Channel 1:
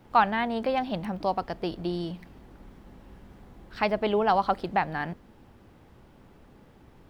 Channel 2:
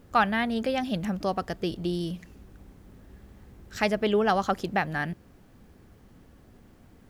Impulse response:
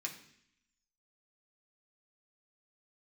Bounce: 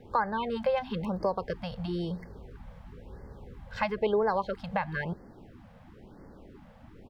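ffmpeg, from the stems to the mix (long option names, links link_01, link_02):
-filter_complex "[0:a]highshelf=frequency=4500:gain=-7.5,acompressor=threshold=-28dB:ratio=2.5,volume=1dB[link_01];[1:a]lowpass=3800,equalizer=frequency=470:width=0.63:gain=11.5,acompressor=threshold=-25dB:ratio=6,adelay=1.8,volume=-5dB[link_02];[link_01][link_02]amix=inputs=2:normalize=0,afftfilt=real='re*(1-between(b*sr/1024,320*pow(3100/320,0.5+0.5*sin(2*PI*1*pts/sr))/1.41,320*pow(3100/320,0.5+0.5*sin(2*PI*1*pts/sr))*1.41))':imag='im*(1-between(b*sr/1024,320*pow(3100/320,0.5+0.5*sin(2*PI*1*pts/sr))/1.41,320*pow(3100/320,0.5+0.5*sin(2*PI*1*pts/sr))*1.41))':win_size=1024:overlap=0.75"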